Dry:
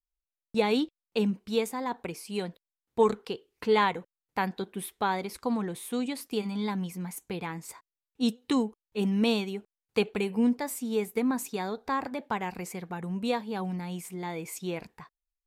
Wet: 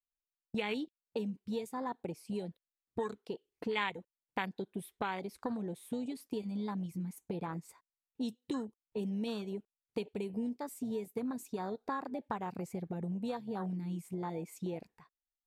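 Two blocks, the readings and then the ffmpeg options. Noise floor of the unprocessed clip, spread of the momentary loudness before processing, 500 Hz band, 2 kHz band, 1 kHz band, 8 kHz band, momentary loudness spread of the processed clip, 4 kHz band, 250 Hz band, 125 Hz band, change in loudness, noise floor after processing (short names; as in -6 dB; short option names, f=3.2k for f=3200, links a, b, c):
under -85 dBFS, 11 LU, -9.5 dB, -7.5 dB, -9.0 dB, -13.0 dB, 5 LU, -10.5 dB, -8.0 dB, -5.0 dB, -8.5 dB, under -85 dBFS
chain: -filter_complex "[0:a]afwtdn=0.0251,acrossover=split=2400[a][b];[a]acompressor=threshold=-39dB:ratio=6[c];[c][b]amix=inputs=2:normalize=0,volume=3.5dB"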